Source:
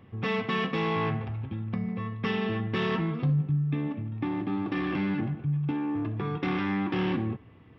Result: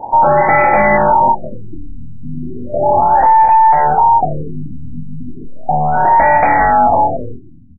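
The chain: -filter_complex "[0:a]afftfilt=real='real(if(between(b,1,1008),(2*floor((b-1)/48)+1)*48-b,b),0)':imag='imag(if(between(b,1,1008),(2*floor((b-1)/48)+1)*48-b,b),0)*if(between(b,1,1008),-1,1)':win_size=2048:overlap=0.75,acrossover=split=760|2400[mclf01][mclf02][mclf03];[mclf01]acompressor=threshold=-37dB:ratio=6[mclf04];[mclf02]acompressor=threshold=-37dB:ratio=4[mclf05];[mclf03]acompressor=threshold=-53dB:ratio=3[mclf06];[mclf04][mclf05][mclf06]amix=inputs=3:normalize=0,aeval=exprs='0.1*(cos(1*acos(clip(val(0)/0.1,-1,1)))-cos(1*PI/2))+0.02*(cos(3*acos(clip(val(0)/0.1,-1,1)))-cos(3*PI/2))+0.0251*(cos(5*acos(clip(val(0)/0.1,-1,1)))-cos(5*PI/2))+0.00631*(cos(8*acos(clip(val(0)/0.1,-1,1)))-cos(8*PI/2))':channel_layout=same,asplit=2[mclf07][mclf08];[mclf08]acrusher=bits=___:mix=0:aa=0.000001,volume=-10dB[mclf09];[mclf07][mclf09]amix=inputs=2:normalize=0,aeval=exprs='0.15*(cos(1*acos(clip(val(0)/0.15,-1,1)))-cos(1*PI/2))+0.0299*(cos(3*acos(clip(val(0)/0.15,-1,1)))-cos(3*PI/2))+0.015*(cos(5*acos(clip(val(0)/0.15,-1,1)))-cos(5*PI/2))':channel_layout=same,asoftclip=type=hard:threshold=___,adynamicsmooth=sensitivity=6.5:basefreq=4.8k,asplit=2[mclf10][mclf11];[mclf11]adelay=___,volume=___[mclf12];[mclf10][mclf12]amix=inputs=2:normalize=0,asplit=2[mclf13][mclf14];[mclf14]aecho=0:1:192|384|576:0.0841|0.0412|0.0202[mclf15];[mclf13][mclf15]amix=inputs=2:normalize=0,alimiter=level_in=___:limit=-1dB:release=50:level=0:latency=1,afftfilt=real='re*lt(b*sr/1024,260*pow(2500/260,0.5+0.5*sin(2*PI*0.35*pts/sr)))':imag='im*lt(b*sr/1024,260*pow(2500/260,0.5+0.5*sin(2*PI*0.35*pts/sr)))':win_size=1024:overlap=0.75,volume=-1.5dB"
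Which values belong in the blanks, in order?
6, -19dB, 25, -4.5dB, 24dB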